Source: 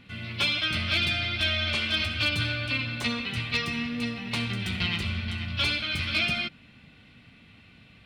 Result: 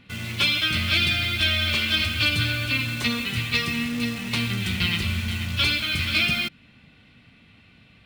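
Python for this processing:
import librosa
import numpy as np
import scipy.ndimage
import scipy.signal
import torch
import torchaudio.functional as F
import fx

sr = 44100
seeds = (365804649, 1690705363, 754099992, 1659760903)

p1 = fx.dynamic_eq(x, sr, hz=730.0, q=1.3, threshold_db=-51.0, ratio=4.0, max_db=-6)
p2 = fx.quant_dither(p1, sr, seeds[0], bits=6, dither='none')
y = p1 + F.gain(torch.from_numpy(p2), -3.0).numpy()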